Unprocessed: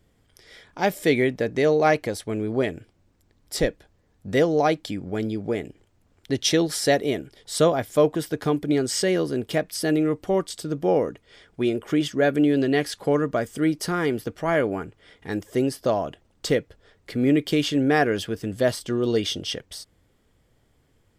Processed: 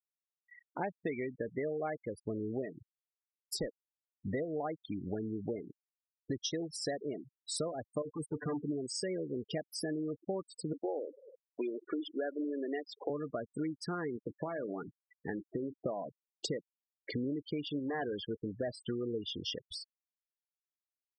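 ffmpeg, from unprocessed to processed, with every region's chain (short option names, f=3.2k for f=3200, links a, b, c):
-filter_complex "[0:a]asettb=1/sr,asplit=3[a][b][c];[a]atrim=end=8.024[d];[b]atrim=start=8.02:end=8.65,asetpts=PTS-STARTPTS,afade=t=in:d=0.004:c=qsin,afade=t=out:st=0.626:d=0.004:c=qsin,volume=26.5dB,asoftclip=hard,volume=-26.5dB,aecho=1:1:6.8:0.79,atrim=end_sample=27783[e];[c]atrim=start=8.646[f];[d][e]acrossfade=d=0.004:c1=hsin:c2=qsin[g];[g][f]acrossfade=d=0.004:c1=qsin:c2=hsin,asettb=1/sr,asplit=3[h][i][j];[h]atrim=end=10.734[k];[i]atrim=start=10.73:end=13.1,asetpts=PTS-STARTPTS,afade=t=in:d=0.004:c=qsin,afade=t=out:st=2.366:d=0.004:c=qsin,highpass=f=280:w=0.5412,highpass=f=280:w=1.3066,aecho=1:1:101|202|303|404:0.0708|0.0418|0.0246|0.0145,atrim=end_sample=104517[l];[j]atrim=start=13.096[m];[k][l]acrossfade=d=0.004:c1=hsin:c2=qsin[n];[n][m]acrossfade=d=0.004:c1=qsin:c2=hsin,asettb=1/sr,asplit=3[o][p][q];[o]atrim=end=14.174[r];[p]atrim=start=14.17:end=15.85,asetpts=PTS-STARTPTS,afade=t=in:d=0.004:c=qsin,afade=t=out:st=1.676:d=0.004:c=qsin,acompressor=threshold=-24dB:ratio=6:attack=3.2:release=140:knee=1:detection=peak,highpass=100,lowpass=3.9k,asplit=2[s][t];[t]adelay=34,volume=-13dB[u];[s][u]amix=inputs=2:normalize=0,atrim=end_sample=74088[v];[q]atrim=start=15.846[w];[r][v]acrossfade=d=0.004:c1=hsin:c2=qsin[x];[x][w]acrossfade=d=0.004:c1=qsin:c2=hsin,asettb=1/sr,asplit=3[y][z][aa];[y]atrim=end=17.794[ab];[z]atrim=start=17.79:end=18.86,asetpts=PTS-STARTPTS,afade=t=in:d=0.004:c=qsin,afade=t=out:st=1.066:d=0.004:c=qsin,lowshelf=f=160:g=-5.5,volume=20.5dB,asoftclip=hard,volume=-20.5dB[ac];[aa]atrim=start=18.856[ad];[ab][ac]acrossfade=d=0.004:c1=hsin:c2=qsin[ae];[ae][ad]acrossfade=d=0.004:c1=qsin:c2=hsin,lowshelf=f=63:g=-8,acompressor=threshold=-34dB:ratio=8,afftfilt=real='re*gte(hypot(re,im),0.0224)':imag='im*gte(hypot(re,im),0.0224)':win_size=1024:overlap=0.75"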